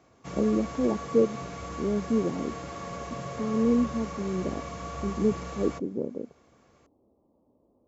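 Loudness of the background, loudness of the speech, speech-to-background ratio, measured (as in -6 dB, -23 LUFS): -38.0 LUFS, -29.0 LUFS, 9.0 dB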